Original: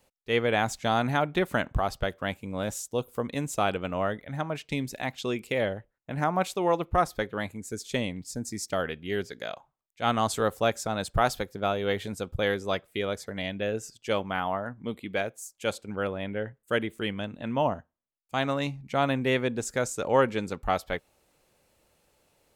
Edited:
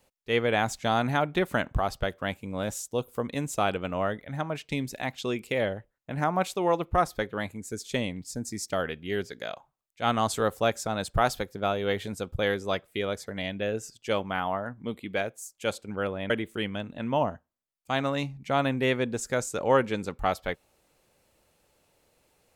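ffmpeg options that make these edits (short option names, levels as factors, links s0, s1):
-filter_complex "[0:a]asplit=2[s0][s1];[s0]atrim=end=16.302[s2];[s1]atrim=start=16.738[s3];[s2][s3]acrossfade=d=0.004:c1=hsin:c2=hsin"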